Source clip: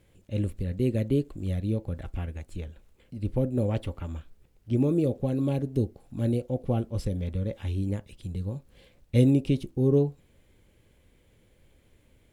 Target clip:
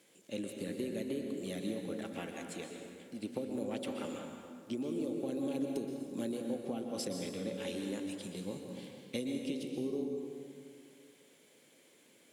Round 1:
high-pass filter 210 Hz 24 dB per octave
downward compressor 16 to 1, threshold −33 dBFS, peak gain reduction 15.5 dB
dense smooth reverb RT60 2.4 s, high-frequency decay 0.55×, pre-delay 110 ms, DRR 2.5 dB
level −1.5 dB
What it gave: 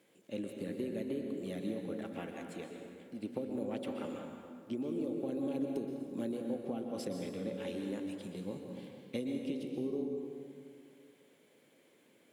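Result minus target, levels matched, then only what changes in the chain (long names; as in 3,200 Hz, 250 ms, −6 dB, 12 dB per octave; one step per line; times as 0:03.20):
8,000 Hz band −8.5 dB
add after high-pass filter: parametric band 7,300 Hz +10 dB 2.3 octaves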